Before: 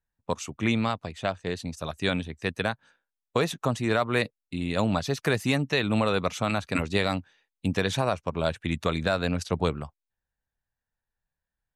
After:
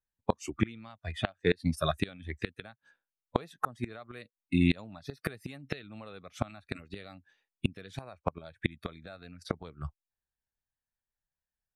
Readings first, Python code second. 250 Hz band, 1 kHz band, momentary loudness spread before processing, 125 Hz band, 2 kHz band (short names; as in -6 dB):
-6.0 dB, -8.5 dB, 9 LU, -6.5 dB, -9.5 dB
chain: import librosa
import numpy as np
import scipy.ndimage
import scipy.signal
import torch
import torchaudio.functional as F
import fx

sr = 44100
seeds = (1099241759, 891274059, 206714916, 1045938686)

y = fx.noise_reduce_blind(x, sr, reduce_db=15)
y = fx.gate_flip(y, sr, shuts_db=-19.0, range_db=-28)
y = F.gain(torch.from_numpy(y), 6.5).numpy()